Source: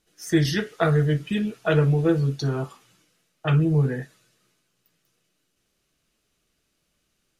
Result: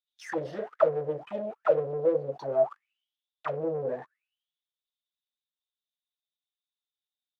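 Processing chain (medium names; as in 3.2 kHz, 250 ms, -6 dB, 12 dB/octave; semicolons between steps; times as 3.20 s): waveshaping leveller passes 5; auto-wah 520–3600 Hz, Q 17, down, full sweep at -8 dBFS; trim +1.5 dB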